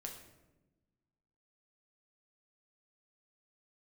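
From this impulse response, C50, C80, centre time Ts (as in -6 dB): 6.5 dB, 9.0 dB, 30 ms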